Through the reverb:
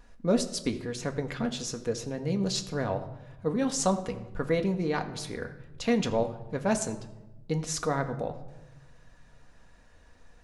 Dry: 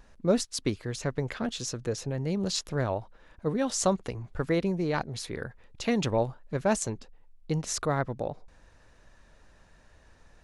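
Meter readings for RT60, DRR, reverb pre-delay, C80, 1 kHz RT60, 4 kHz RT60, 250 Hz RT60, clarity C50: 1.0 s, 5.0 dB, 4 ms, 14.0 dB, 0.90 s, 0.65 s, 1.6 s, 12.5 dB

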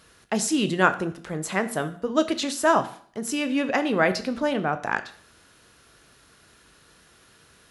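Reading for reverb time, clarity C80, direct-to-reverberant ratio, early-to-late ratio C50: 0.55 s, 17.0 dB, 10.0 dB, 14.5 dB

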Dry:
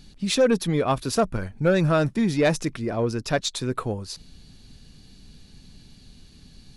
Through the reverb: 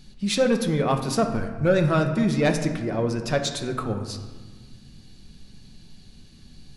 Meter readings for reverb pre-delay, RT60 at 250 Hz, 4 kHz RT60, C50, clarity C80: 5 ms, 2.2 s, 0.85 s, 8.0 dB, 10.0 dB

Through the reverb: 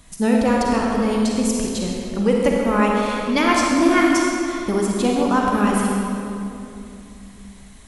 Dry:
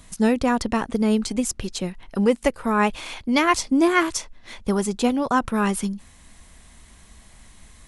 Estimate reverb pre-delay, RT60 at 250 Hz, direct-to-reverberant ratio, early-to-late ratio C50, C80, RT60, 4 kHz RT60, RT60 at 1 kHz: 35 ms, 3.6 s, -2.0 dB, -1.0 dB, 0.5 dB, 2.9 s, 1.9 s, 2.6 s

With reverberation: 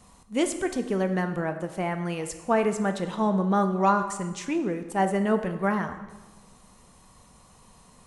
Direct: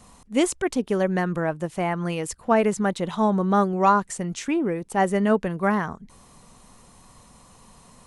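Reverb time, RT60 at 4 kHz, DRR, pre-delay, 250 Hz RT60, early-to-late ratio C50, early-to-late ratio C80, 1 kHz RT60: 1.2 s, 1.0 s, 7.0 dB, 3 ms, 1.3 s, 10.0 dB, 12.0 dB, 1.2 s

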